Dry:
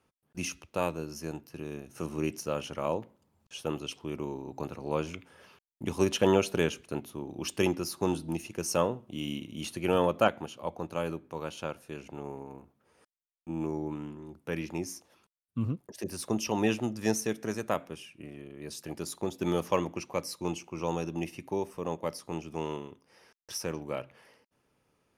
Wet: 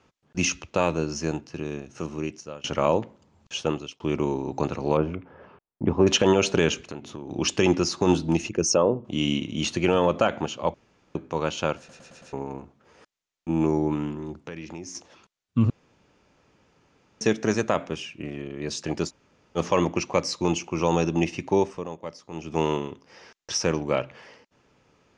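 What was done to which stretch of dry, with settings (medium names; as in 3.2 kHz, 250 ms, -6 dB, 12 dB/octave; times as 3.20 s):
1.17–2.64 s: fade out, to -23 dB
3.55–4.00 s: fade out
4.97–6.07 s: low-pass 1.1 kHz
6.74–7.31 s: compression 5:1, threshold -43 dBFS
8.49–9.05 s: resonances exaggerated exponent 1.5
10.74–11.15 s: room tone
11.78 s: stutter in place 0.11 s, 5 plays
14.37–14.95 s: compression 4:1, threshold -46 dBFS
15.70–17.21 s: room tone
19.08–19.58 s: room tone, crossfade 0.06 s
21.63–22.58 s: dip -13 dB, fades 0.25 s
whole clip: Chebyshev low-pass 7 kHz, order 4; loudness maximiser +19.5 dB; trim -8 dB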